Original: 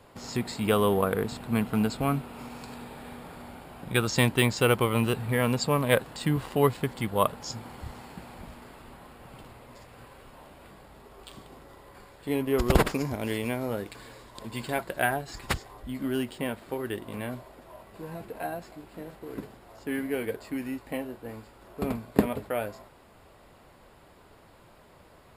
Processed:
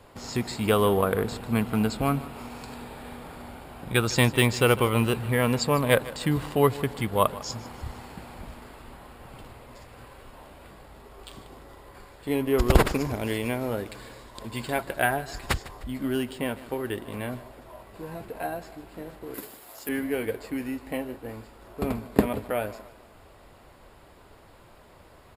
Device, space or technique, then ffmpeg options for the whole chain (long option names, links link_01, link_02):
low shelf boost with a cut just above: -filter_complex "[0:a]lowshelf=frequency=76:gain=5,equalizer=frequency=170:width_type=o:width=0.77:gain=-3,asettb=1/sr,asplit=3[link_01][link_02][link_03];[link_01]atrim=end=19.344[link_04];[link_02]atrim=start=19.34:end=19.89,asetpts=PTS-STARTPTS,afade=type=in:duration=0.004:curve=qsin,afade=type=out:start_time=0.546:duration=0.004:curve=qsin,aemphasis=mode=production:type=riaa[link_05];[link_03]atrim=start=19.886[link_06];[link_04][link_05]acrossfade=duration=0.004:curve1=hsin:curve2=qsin[link_07];[link_07][link_06]acrossfade=duration=0.004:curve1=qsin:curve2=hsin,aecho=1:1:152|304|456|608:0.126|0.0554|0.0244|0.0107,volume=2dB"